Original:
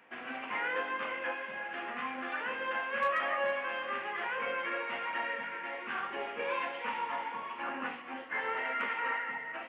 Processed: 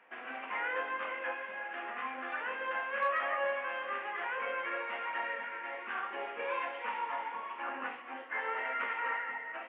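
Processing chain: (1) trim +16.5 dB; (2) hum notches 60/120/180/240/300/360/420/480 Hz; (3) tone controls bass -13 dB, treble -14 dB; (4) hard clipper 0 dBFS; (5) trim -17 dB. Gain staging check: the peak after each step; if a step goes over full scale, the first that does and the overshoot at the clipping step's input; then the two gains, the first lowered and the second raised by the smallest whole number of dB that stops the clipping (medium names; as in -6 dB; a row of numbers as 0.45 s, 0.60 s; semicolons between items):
-6.0 dBFS, -5.5 dBFS, -5.0 dBFS, -5.0 dBFS, -22.0 dBFS; nothing clips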